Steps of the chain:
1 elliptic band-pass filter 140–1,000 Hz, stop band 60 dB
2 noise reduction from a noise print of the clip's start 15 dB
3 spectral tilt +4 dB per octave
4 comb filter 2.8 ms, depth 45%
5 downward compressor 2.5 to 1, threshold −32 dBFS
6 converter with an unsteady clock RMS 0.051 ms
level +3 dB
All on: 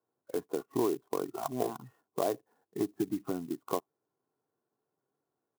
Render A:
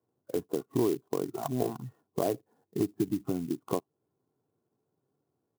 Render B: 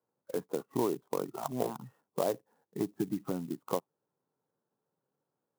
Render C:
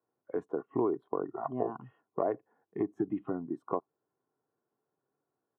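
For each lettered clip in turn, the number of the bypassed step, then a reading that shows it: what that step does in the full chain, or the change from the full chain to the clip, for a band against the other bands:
3, 125 Hz band +7.5 dB
4, 125 Hz band +3.5 dB
6, 2 kHz band −2.5 dB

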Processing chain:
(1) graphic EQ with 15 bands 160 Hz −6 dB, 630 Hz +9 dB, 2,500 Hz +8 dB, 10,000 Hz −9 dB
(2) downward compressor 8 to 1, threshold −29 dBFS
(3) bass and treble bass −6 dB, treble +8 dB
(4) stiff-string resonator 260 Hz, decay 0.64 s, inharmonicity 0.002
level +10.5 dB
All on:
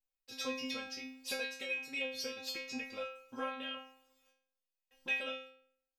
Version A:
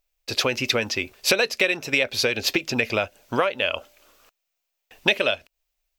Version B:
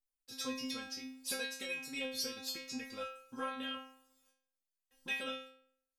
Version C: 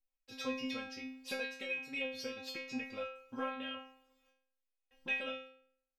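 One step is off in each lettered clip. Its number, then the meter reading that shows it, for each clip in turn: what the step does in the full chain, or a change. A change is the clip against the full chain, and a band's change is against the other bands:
4, 125 Hz band +16.5 dB
1, 8 kHz band +4.5 dB
3, 8 kHz band −7.0 dB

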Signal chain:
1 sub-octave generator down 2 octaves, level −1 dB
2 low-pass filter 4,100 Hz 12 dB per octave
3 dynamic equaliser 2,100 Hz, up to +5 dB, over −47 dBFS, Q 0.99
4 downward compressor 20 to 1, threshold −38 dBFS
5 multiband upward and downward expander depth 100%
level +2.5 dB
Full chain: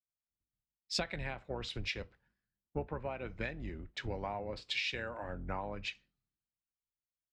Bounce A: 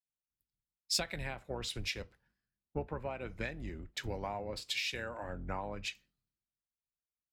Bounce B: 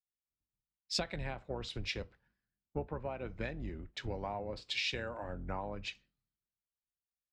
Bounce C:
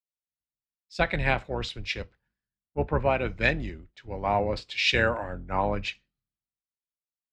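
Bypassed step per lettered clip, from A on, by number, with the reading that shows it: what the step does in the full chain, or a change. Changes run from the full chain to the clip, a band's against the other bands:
2, 8 kHz band +8.5 dB
3, 2 kHz band −2.5 dB
4, average gain reduction 10.5 dB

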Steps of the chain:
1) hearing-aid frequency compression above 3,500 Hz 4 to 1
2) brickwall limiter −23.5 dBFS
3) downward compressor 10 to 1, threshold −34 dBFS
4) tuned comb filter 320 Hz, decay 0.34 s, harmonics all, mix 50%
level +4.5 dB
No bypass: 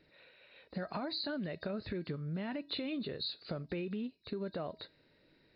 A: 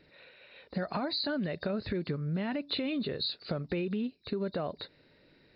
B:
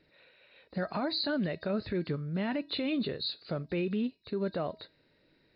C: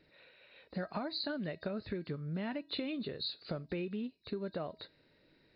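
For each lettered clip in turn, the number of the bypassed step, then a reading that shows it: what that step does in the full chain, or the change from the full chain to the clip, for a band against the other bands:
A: 4, change in integrated loudness +5.5 LU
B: 3, average gain reduction 4.5 dB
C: 2, average gain reduction 2.0 dB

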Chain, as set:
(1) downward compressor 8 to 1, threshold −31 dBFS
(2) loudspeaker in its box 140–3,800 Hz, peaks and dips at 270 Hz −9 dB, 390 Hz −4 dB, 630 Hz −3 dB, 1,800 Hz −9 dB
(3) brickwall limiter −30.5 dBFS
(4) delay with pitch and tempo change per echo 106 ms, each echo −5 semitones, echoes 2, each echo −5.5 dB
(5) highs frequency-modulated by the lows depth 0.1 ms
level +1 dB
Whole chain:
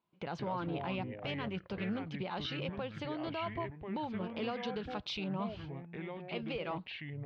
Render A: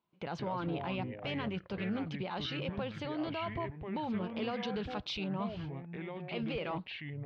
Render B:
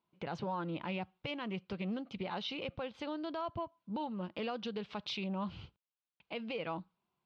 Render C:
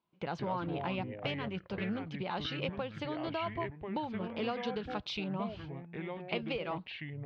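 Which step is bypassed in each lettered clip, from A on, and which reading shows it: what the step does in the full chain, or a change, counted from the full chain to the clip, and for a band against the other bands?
1, average gain reduction 5.5 dB
4, 125 Hz band −3.0 dB
3, change in crest factor +5.5 dB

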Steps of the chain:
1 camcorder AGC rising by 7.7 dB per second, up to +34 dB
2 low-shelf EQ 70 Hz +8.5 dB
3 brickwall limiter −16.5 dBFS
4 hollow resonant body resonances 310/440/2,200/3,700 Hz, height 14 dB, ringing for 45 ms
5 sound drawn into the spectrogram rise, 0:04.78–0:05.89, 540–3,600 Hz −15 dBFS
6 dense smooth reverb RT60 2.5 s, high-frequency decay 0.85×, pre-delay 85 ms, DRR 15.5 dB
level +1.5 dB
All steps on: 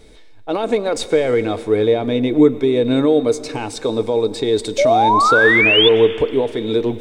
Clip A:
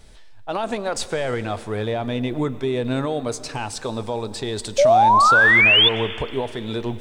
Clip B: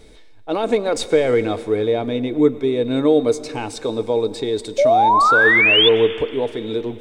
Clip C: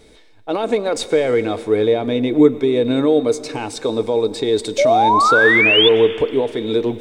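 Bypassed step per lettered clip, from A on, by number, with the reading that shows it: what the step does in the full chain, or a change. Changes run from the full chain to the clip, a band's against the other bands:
4, 250 Hz band −8.5 dB
1, change in momentary loudness spread +3 LU
2, 125 Hz band −2.5 dB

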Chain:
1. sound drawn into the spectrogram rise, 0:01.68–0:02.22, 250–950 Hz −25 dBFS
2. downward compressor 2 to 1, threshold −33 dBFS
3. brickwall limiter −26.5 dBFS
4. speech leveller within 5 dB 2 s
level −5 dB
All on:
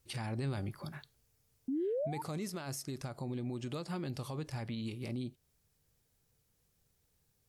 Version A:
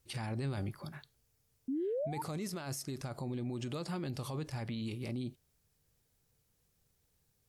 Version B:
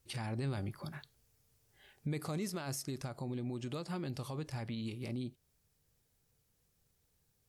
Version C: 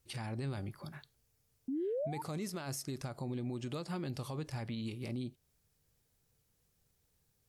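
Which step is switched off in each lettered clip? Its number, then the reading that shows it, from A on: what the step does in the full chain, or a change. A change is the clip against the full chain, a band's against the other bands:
2, average gain reduction 5.0 dB
1, 500 Hz band −4.5 dB
4, change in momentary loudness spread +1 LU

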